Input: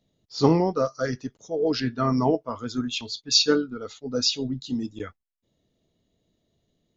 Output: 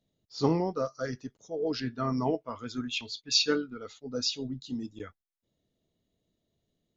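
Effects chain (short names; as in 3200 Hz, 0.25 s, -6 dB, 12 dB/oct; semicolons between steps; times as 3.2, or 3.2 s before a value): 2.26–3.91 bell 2300 Hz +8.5 dB 0.88 oct; gain -7 dB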